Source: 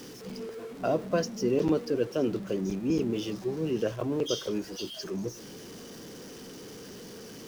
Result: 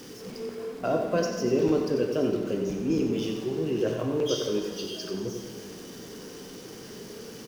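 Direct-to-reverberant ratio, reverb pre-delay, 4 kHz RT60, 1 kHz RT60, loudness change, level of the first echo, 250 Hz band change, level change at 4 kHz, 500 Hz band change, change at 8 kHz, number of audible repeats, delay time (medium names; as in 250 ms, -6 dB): 1.5 dB, 7 ms, 1.6 s, 1.8 s, +2.5 dB, -8.0 dB, +2.0 dB, +2.0 dB, +3.0 dB, +2.0 dB, 1, 92 ms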